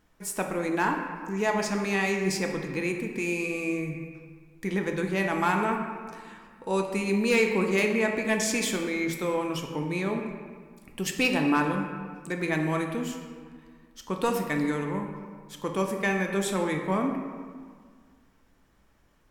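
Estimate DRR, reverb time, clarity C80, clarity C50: 2.5 dB, 1.8 s, 6.5 dB, 5.0 dB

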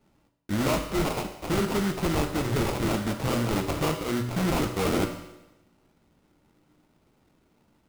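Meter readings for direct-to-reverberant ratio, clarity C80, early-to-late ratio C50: 4.5 dB, 10.0 dB, 8.0 dB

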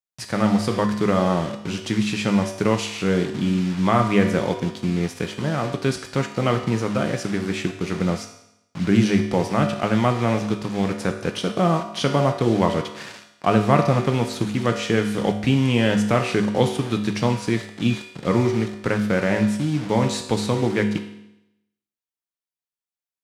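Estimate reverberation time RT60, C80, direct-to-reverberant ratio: 0.85 s, 11.0 dB, 4.0 dB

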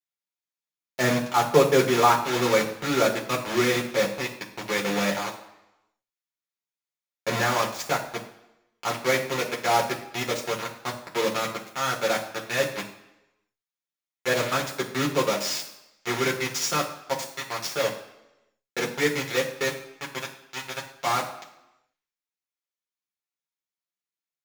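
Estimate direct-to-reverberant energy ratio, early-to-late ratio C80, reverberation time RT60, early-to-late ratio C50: -2.5 dB, 12.5 dB, 0.90 s, 9.5 dB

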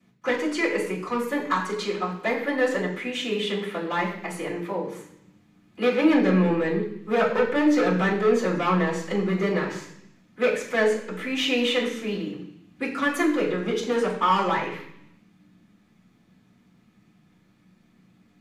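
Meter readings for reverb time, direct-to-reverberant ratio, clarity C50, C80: 0.70 s, -15.0 dB, 7.0 dB, 9.5 dB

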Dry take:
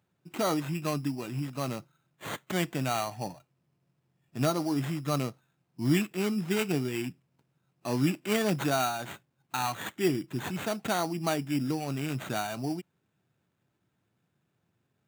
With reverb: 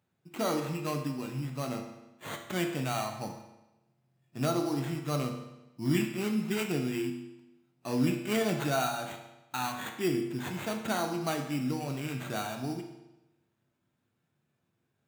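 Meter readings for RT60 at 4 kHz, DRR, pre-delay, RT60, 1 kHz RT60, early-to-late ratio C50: 0.90 s, 3.0 dB, 9 ms, 1.0 s, 1.0 s, 6.5 dB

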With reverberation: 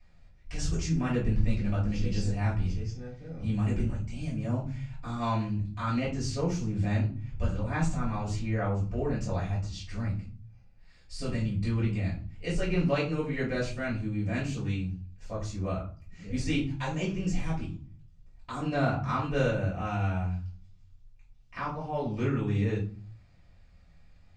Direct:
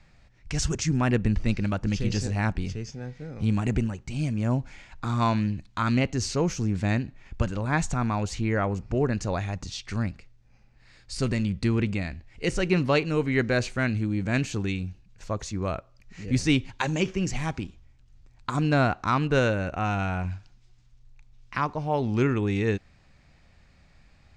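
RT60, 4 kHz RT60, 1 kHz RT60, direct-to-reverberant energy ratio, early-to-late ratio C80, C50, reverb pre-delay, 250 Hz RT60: 0.40 s, 0.25 s, 0.40 s, -8.0 dB, 12.5 dB, 7.0 dB, 3 ms, 0.65 s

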